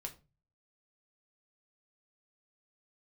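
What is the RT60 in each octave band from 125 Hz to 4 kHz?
0.60 s, 0.40 s, 0.35 s, 0.30 s, 0.25 s, 0.25 s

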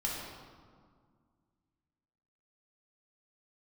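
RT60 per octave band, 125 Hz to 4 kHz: 2.6 s, 2.6 s, 1.9 s, 1.9 s, 1.3 s, 1.1 s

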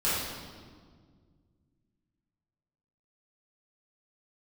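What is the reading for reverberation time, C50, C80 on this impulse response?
1.8 s, -2.0 dB, 1.0 dB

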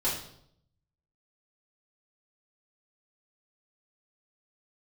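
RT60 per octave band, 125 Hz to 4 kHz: 1.1 s, 0.80 s, 0.75 s, 0.65 s, 0.55 s, 0.60 s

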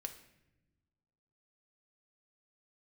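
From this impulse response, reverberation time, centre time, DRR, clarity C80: no single decay rate, 11 ms, 5.5 dB, 14.0 dB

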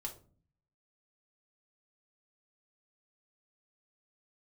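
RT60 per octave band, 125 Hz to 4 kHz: 0.90 s, 0.75 s, 0.50 s, 0.35 s, 0.25 s, 0.25 s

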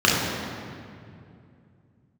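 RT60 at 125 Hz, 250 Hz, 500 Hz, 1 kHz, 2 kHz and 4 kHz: 3.9 s, 3.3 s, 2.7 s, 2.3 s, 2.0 s, 1.6 s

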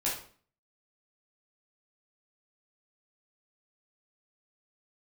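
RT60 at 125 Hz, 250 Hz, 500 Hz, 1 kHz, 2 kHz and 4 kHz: 0.55 s, 0.60 s, 0.50 s, 0.45 s, 0.40 s, 0.40 s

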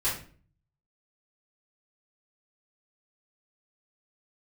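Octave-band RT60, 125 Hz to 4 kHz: 0.85 s, 0.60 s, 0.50 s, 0.40 s, 0.40 s, 0.35 s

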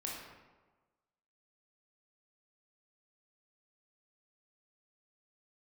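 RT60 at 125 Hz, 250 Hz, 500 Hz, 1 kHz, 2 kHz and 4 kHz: 1.3 s, 1.3 s, 1.3 s, 1.3 s, 1.0 s, 0.75 s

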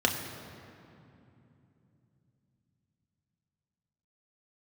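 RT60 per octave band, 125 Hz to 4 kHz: 5.2 s, 4.5 s, 3.1 s, 2.7 s, 2.3 s, 1.7 s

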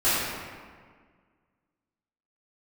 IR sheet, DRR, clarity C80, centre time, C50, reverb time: -18.0 dB, -0.5 dB, 124 ms, -3.0 dB, 1.7 s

